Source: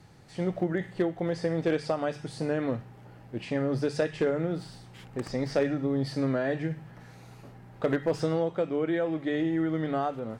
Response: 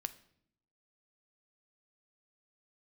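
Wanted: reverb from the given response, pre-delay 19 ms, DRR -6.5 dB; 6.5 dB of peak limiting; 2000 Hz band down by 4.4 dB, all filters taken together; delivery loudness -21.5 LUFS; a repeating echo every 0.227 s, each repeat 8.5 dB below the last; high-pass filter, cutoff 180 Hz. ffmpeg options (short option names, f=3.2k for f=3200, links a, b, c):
-filter_complex "[0:a]highpass=180,equalizer=f=2k:t=o:g=-5.5,alimiter=limit=-21.5dB:level=0:latency=1,aecho=1:1:227|454|681|908:0.376|0.143|0.0543|0.0206,asplit=2[a][b];[1:a]atrim=start_sample=2205,adelay=19[c];[b][c]afir=irnorm=-1:irlink=0,volume=8dB[d];[a][d]amix=inputs=2:normalize=0,volume=3.5dB"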